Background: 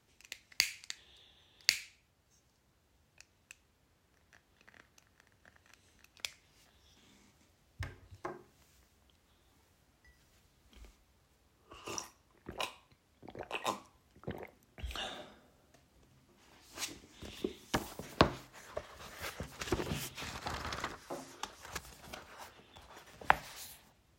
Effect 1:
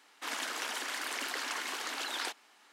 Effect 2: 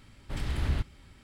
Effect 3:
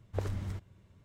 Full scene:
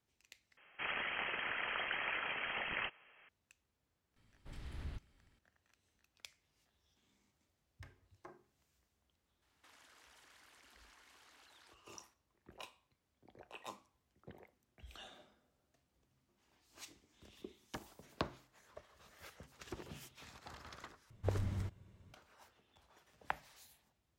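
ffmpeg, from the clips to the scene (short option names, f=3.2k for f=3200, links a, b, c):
-filter_complex "[1:a]asplit=2[a][b];[0:a]volume=-13dB[c];[a]lowpass=f=3k:t=q:w=0.5098,lowpass=f=3k:t=q:w=0.6013,lowpass=f=3k:t=q:w=0.9,lowpass=f=3k:t=q:w=2.563,afreqshift=-3500[d];[b]acompressor=threshold=-44dB:ratio=6:attack=3.2:release=140:knee=1:detection=peak[e];[c]asplit=3[f][g][h];[f]atrim=end=0.574[i];[d]atrim=end=2.72,asetpts=PTS-STARTPTS,volume=-1dB[j];[g]atrim=start=3.286:end=21.104[k];[3:a]atrim=end=1.04,asetpts=PTS-STARTPTS,volume=-2dB[l];[h]atrim=start=22.136[m];[2:a]atrim=end=1.23,asetpts=PTS-STARTPTS,volume=-17dB,afade=t=in:d=0.004:c=hsin,afade=t=out:st=1.226:d=0.004:c=hsin,adelay=4160[n];[e]atrim=end=2.72,asetpts=PTS-STARTPTS,volume=-17.5dB,afade=t=in:d=0.004:c=hsin,afade=t=out:st=2.716:d=0.004:c=hsin,adelay=9420[o];[i][j]acrossfade=d=0.004:c1=hsin:c2=hsin[p];[p][k]acrossfade=d=0.004:c1=hsin:c2=hsin[q];[q][l]acrossfade=d=0.004:c1=hsin:c2=hsin[r];[r][m]acrossfade=d=0.004:c1=hsin:c2=hsin[s];[s][n][o]amix=inputs=3:normalize=0"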